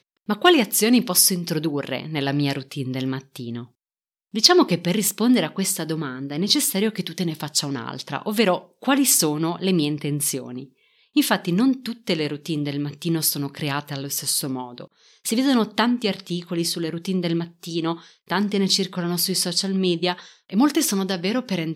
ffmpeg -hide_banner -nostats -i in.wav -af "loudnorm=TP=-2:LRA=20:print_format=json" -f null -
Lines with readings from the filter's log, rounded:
"input_i" : "-21.9",
"input_tp" : "-2.3",
"input_lra" : "4.0",
"input_thresh" : "-32.2",